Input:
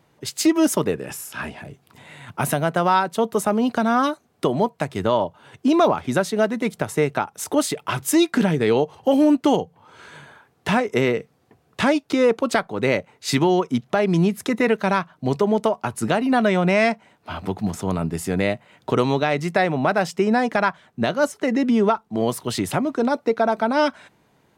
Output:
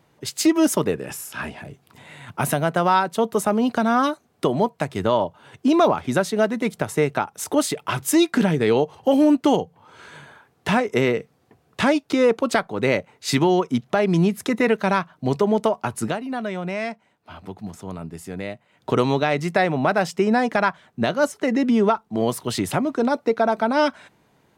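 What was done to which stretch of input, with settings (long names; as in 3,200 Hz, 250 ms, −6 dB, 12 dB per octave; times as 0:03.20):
0:16.00–0:18.92: duck −9.5 dB, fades 0.19 s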